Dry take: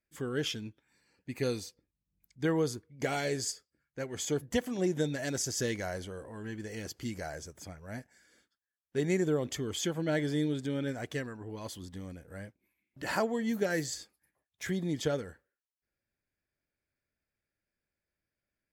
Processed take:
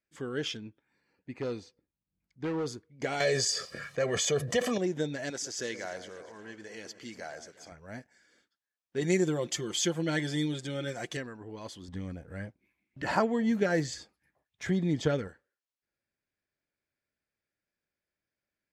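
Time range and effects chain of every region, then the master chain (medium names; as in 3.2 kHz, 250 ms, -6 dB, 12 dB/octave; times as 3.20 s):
0.57–2.66 s: low-pass 1.9 kHz 6 dB/octave + overload inside the chain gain 28 dB
3.20–4.78 s: high-pass 130 Hz + comb 1.7 ms, depth 74% + level flattener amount 70%
5.30–7.72 s: high-pass 420 Hz 6 dB/octave + echo whose repeats swap between lows and highs 119 ms, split 1.6 kHz, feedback 69%, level -12 dB
9.01–11.17 s: treble shelf 4.6 kHz +11.5 dB + comb 5.7 ms, depth 66%
11.88–15.28 s: bass shelf 230 Hz +12 dB + sweeping bell 3.2 Hz 670–2700 Hz +8 dB
whole clip: low-pass 6.6 kHz 12 dB/octave; bass shelf 94 Hz -10 dB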